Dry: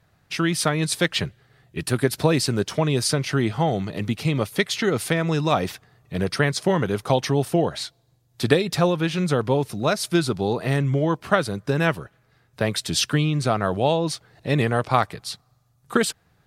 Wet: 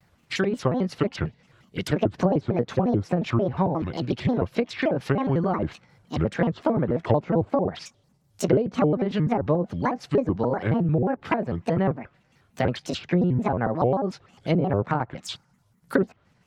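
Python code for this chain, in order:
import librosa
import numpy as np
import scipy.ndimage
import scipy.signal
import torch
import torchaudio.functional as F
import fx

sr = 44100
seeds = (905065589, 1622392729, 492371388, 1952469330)

y = fx.pitch_trill(x, sr, semitones=6.0, every_ms=147)
y = fx.env_lowpass_down(y, sr, base_hz=670.0, full_db=-17.0)
y = fx.vibrato_shape(y, sr, shape='square', rate_hz=5.6, depth_cents=250.0)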